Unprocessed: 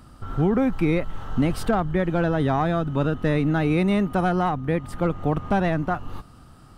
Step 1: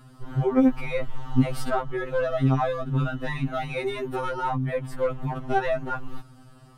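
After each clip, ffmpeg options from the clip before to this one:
ffmpeg -i in.wav -af "afftfilt=real='re*2.45*eq(mod(b,6),0)':imag='im*2.45*eq(mod(b,6),0)':win_size=2048:overlap=0.75" out.wav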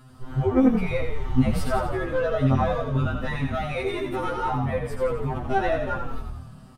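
ffmpeg -i in.wav -filter_complex "[0:a]asplit=8[link_01][link_02][link_03][link_04][link_05][link_06][link_07][link_08];[link_02]adelay=86,afreqshift=-39,volume=-6dB[link_09];[link_03]adelay=172,afreqshift=-78,volume=-10.9dB[link_10];[link_04]adelay=258,afreqshift=-117,volume=-15.8dB[link_11];[link_05]adelay=344,afreqshift=-156,volume=-20.6dB[link_12];[link_06]adelay=430,afreqshift=-195,volume=-25.5dB[link_13];[link_07]adelay=516,afreqshift=-234,volume=-30.4dB[link_14];[link_08]adelay=602,afreqshift=-273,volume=-35.3dB[link_15];[link_01][link_09][link_10][link_11][link_12][link_13][link_14][link_15]amix=inputs=8:normalize=0" out.wav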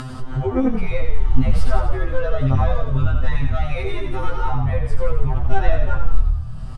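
ffmpeg -i in.wav -af "asubboost=boost=10.5:cutoff=76,acompressor=mode=upward:threshold=-16dB:ratio=2.5,lowpass=8300" out.wav

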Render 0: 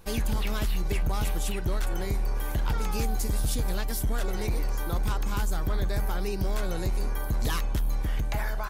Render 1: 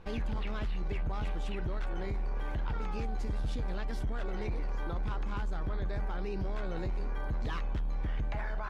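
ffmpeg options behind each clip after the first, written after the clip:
ffmpeg -i in.wav -af "lowpass=2800,alimiter=level_in=4dB:limit=-24dB:level=0:latency=1:release=12,volume=-4dB" out.wav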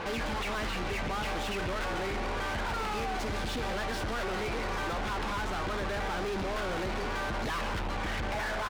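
ffmpeg -i in.wav -filter_complex "[0:a]asplit=4[link_01][link_02][link_03][link_04];[link_02]adelay=141,afreqshift=-130,volume=-13dB[link_05];[link_03]adelay=282,afreqshift=-260,volume=-22.1dB[link_06];[link_04]adelay=423,afreqshift=-390,volume=-31.2dB[link_07];[link_01][link_05][link_06][link_07]amix=inputs=4:normalize=0,asplit=2[link_08][link_09];[link_09]highpass=frequency=720:poles=1,volume=38dB,asoftclip=type=tanh:threshold=-25dB[link_10];[link_08][link_10]amix=inputs=2:normalize=0,lowpass=frequency=3700:poles=1,volume=-6dB,volume=-2dB" out.wav

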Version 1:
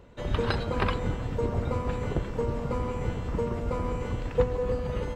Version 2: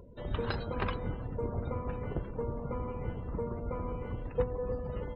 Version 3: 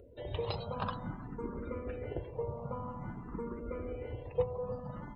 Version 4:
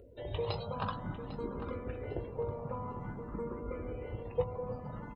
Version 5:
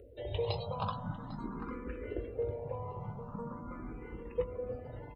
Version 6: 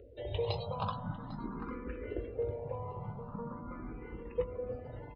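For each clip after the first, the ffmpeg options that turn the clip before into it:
ffmpeg -i in.wav -af "acompressor=mode=upward:threshold=-36dB:ratio=2.5,afftdn=noise_reduction=27:noise_floor=-43,volume=-6.5dB" out.wav
ffmpeg -i in.wav -filter_complex "[0:a]lowshelf=frequency=70:gain=-9.5,asplit=2[link_01][link_02];[link_02]afreqshift=0.51[link_03];[link_01][link_03]amix=inputs=2:normalize=1,volume=1dB" out.wav
ffmpeg -i in.wav -filter_complex "[0:a]asplit=2[link_01][link_02];[link_02]adelay=19,volume=-11.5dB[link_03];[link_01][link_03]amix=inputs=2:normalize=0,asplit=2[link_04][link_05];[link_05]adelay=800,lowpass=frequency=2700:poles=1,volume=-11dB,asplit=2[link_06][link_07];[link_07]adelay=800,lowpass=frequency=2700:poles=1,volume=0.34,asplit=2[link_08][link_09];[link_09]adelay=800,lowpass=frequency=2700:poles=1,volume=0.34,asplit=2[link_10][link_11];[link_11]adelay=800,lowpass=frequency=2700:poles=1,volume=0.34[link_12];[link_04][link_06][link_08][link_10][link_12]amix=inputs=5:normalize=0" out.wav
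ffmpeg -i in.wav -filter_complex "[0:a]asplit=2[link_01][link_02];[link_02]afreqshift=0.42[link_03];[link_01][link_03]amix=inputs=2:normalize=1,volume=2dB" out.wav
ffmpeg -i in.wav -af "aresample=11025,aresample=44100" out.wav

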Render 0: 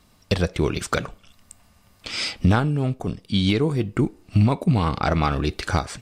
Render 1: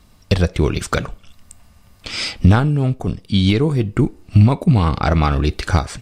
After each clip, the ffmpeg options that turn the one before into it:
ffmpeg -i in.wav -af "lowshelf=frequency=100:gain=9,volume=3dB" out.wav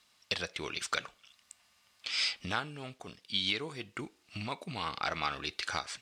ffmpeg -i in.wav -af "acrusher=bits=9:mix=0:aa=0.000001,bandpass=frequency=3500:width_type=q:width=0.69:csg=0,volume=-6dB" out.wav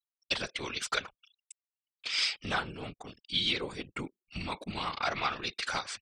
ffmpeg -i in.wav -af "afftfilt=real='hypot(re,im)*cos(2*PI*random(0))':imag='hypot(re,im)*sin(2*PI*random(1))':win_size=512:overlap=0.75,afftfilt=real='re*gte(hypot(re,im),0.000562)':imag='im*gte(hypot(re,im),0.000562)':win_size=1024:overlap=0.75,anlmdn=0.0000251,volume=8dB" out.wav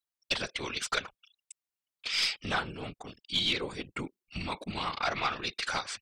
ffmpeg -i in.wav -af "aeval=exprs='0.168*(cos(1*acos(clip(val(0)/0.168,-1,1)))-cos(1*PI/2))+0.0422*(cos(2*acos(clip(val(0)/0.168,-1,1)))-cos(2*PI/2))+0.00531*(cos(4*acos(clip(val(0)/0.168,-1,1)))-cos(4*PI/2))+0.00531*(cos(5*acos(clip(val(0)/0.168,-1,1)))-cos(5*PI/2))':channel_layout=same" out.wav

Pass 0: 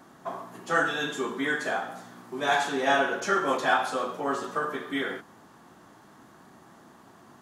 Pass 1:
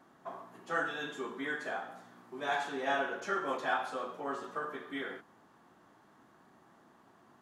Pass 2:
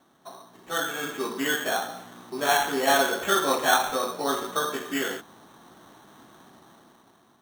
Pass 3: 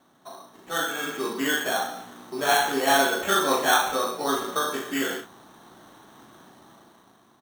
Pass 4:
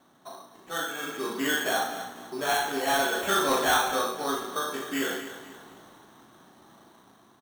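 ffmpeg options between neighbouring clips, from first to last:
ffmpeg -i in.wav -af "bass=frequency=250:gain=-3,treble=frequency=4000:gain=-6,volume=-8.5dB" out.wav
ffmpeg -i in.wav -af "acrusher=samples=9:mix=1:aa=0.000001,dynaudnorm=framelen=280:gausssize=7:maxgain=11dB" out.wav
ffmpeg -i in.wav -af "aecho=1:1:37|69:0.531|0.251" out.wav
ffmpeg -i in.wav -af "aecho=1:1:248|496|744|992:0.2|0.0758|0.0288|0.0109,tremolo=f=0.55:d=0.4,asoftclip=type=tanh:threshold=-16.5dB" out.wav

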